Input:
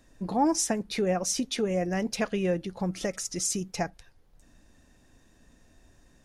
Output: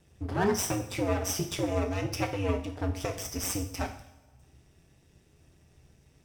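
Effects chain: comb filter that takes the minimum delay 0.37 ms; ring modulator 97 Hz; two-slope reverb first 0.55 s, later 1.6 s, from -16 dB, DRR 3 dB

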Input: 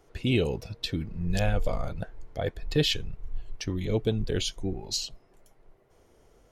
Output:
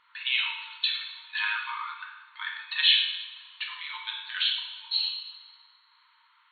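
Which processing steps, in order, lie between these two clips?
FFT band-pass 880–4400 Hz; two-slope reverb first 0.94 s, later 2.4 s, from -18 dB, DRR -1 dB; trim +5.5 dB

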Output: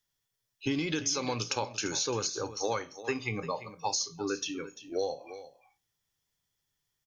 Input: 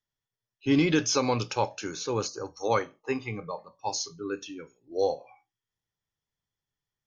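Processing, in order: treble shelf 2.9 kHz +9 dB; compression 12:1, threshold -30 dBFS, peak gain reduction 13.5 dB; delay 345 ms -14 dB; trim +2.5 dB

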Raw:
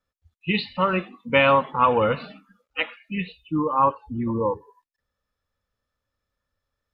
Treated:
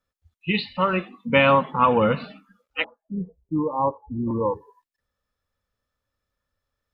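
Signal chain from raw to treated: 1.17–2.24 s: peaking EQ 190 Hz +9 dB 0.75 oct; 2.84–4.31 s: steep low-pass 970 Hz 48 dB/octave

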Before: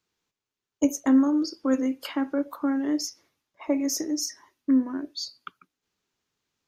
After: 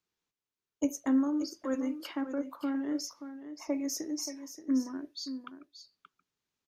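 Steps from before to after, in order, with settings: 2.21–2.96 s: treble shelf 5.3 kHz -6.5 dB; delay 578 ms -11 dB; trim -7.5 dB

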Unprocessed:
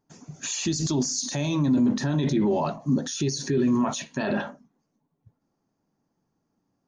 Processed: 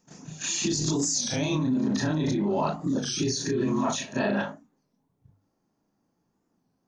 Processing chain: short-time spectra conjugated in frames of 78 ms; hum notches 50/100/150 Hz; in parallel at +1.5 dB: compressor with a negative ratio -29 dBFS, ratio -0.5; on the sum: pre-echo 159 ms -21 dB; warped record 33 1/3 rpm, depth 160 cents; trim -3.5 dB

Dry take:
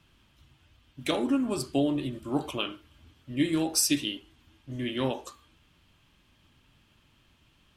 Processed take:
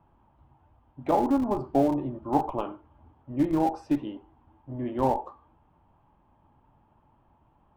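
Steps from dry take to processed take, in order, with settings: resonant low-pass 860 Hz, resonance Q 4.9; in parallel at -9 dB: Schmitt trigger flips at -22 dBFS

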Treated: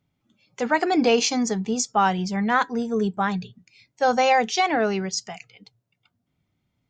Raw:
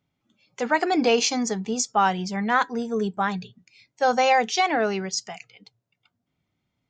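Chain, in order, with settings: bass shelf 210 Hz +6 dB

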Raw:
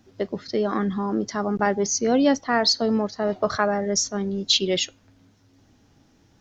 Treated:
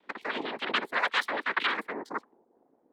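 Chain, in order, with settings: treble shelf 5.2 kHz -10 dB; static phaser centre 1.7 kHz, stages 8; noise-vocoded speech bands 6; low-pass sweep 1.4 kHz -> 320 Hz, 3.75–5.27 s; wide varispeed 2.19×; trim -5 dB

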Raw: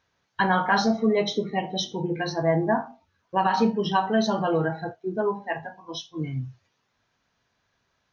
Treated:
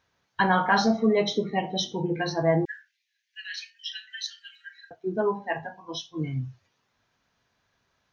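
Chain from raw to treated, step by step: 2.65–4.91 s: steep high-pass 1.7 kHz 96 dB/octave

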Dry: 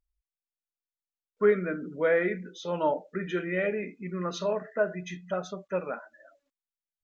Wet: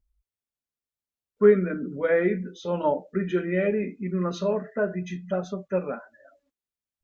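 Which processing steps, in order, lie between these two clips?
bass shelf 400 Hz +11.5 dB; comb of notches 160 Hz

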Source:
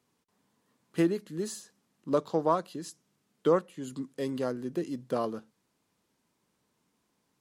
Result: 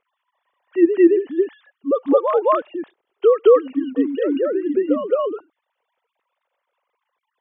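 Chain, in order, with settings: formants replaced by sine waves; on a send: reverse echo 218 ms -4.5 dB; on the sum: loudness maximiser +16 dB; trim -3 dB

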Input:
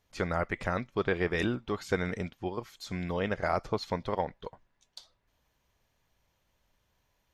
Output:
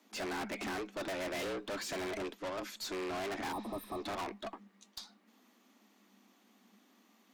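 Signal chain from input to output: frequency shift +190 Hz; valve stage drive 44 dB, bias 0.2; spectral replace 3.55–3.98 s, 1.3–8.2 kHz after; trim +7.5 dB

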